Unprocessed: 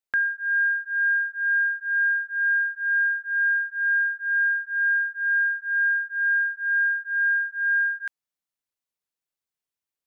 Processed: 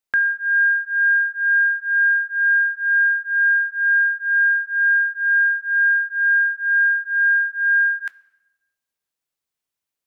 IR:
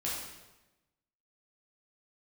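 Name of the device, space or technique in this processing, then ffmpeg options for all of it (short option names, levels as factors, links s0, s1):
keyed gated reverb: -filter_complex "[0:a]asplit=3[s0][s1][s2];[1:a]atrim=start_sample=2205[s3];[s1][s3]afir=irnorm=-1:irlink=0[s4];[s2]apad=whole_len=443748[s5];[s4][s5]sidechaingate=range=0.355:threshold=0.0251:ratio=16:detection=peak,volume=0.224[s6];[s0][s6]amix=inputs=2:normalize=0,volume=1.58"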